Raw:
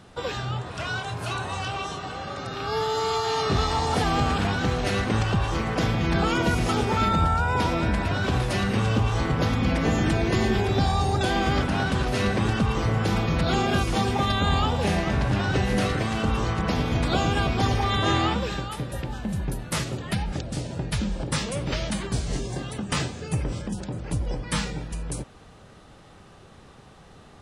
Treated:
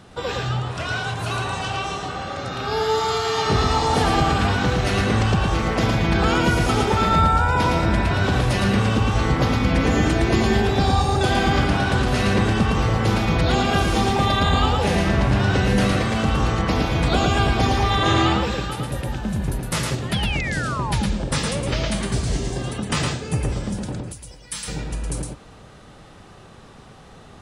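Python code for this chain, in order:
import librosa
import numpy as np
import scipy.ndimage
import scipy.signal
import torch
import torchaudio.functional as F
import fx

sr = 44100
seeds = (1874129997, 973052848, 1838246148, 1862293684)

y = fx.spec_paint(x, sr, seeds[0], shape='fall', start_s=20.13, length_s=0.81, low_hz=780.0, high_hz=3500.0, level_db=-33.0)
y = fx.pre_emphasis(y, sr, coefficient=0.9, at=(24.01, 24.68))
y = y + 10.0 ** (-3.5 / 20.0) * np.pad(y, (int(112 * sr / 1000.0), 0))[:len(y)]
y = y * 10.0 ** (3.0 / 20.0)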